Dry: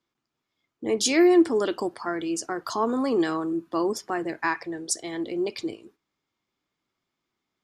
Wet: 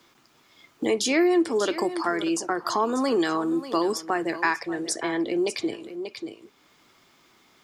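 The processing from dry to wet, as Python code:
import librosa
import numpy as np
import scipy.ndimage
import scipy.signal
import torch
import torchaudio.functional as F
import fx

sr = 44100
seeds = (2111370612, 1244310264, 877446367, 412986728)

p1 = fx.low_shelf(x, sr, hz=290.0, db=-6.5)
p2 = p1 + fx.echo_single(p1, sr, ms=587, db=-17.0, dry=0)
p3 = fx.band_squash(p2, sr, depth_pct=70)
y = p3 * 10.0 ** (3.0 / 20.0)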